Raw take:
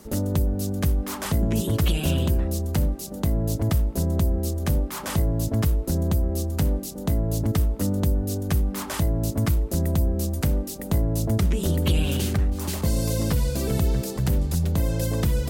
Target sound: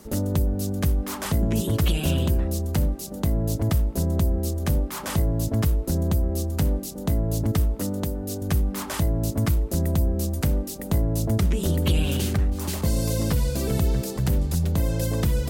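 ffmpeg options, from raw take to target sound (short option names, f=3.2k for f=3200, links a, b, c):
-filter_complex "[0:a]asettb=1/sr,asplit=3[a][b][c];[a]atrim=end=7.804[d];[b]atrim=start=7.8:end=8.42,asetpts=PTS-STARTPTS,afade=t=in:d=0.004:c=qsin,afade=t=out:st=0.616:d=0.004:c=qsin,lowshelf=f=140:g=-10[e];[c]atrim=start=8.416[f];[d][e]acrossfade=d=0.004:c1=hsin:c2=qsin[g];[g][f]acrossfade=d=0.004:c1=qsin:c2=hsin"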